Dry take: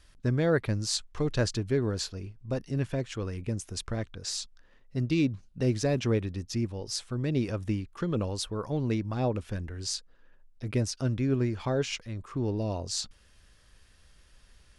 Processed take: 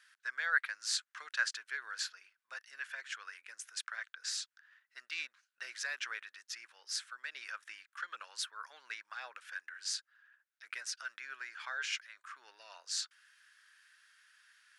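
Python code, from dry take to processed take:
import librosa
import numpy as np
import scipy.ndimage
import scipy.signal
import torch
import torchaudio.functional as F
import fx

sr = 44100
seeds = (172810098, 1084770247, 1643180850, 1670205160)

y = fx.ladder_highpass(x, sr, hz=1400.0, resonance_pct=65)
y = y * 10.0 ** (6.5 / 20.0)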